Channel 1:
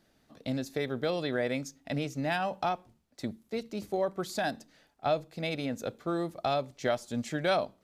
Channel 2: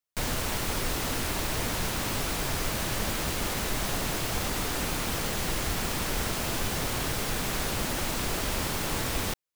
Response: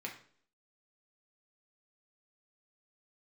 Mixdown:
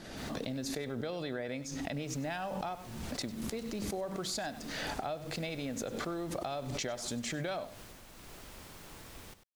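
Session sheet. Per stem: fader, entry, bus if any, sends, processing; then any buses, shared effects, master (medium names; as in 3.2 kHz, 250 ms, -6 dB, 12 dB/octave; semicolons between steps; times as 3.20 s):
-0.5 dB, 0.00 s, no send, echo send -17.5 dB, low-pass 9.9 kHz; swell ahead of each attack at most 39 dB/s
1.66 s -22.5 dB -> 2.15 s -12 dB -> 7.79 s -12 dB -> 8.02 s -20.5 dB, 0.00 s, no send, echo send -12 dB, auto duck -12 dB, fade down 1.70 s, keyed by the first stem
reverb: none
echo: delay 97 ms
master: compression, threshold -34 dBFS, peak gain reduction 10.5 dB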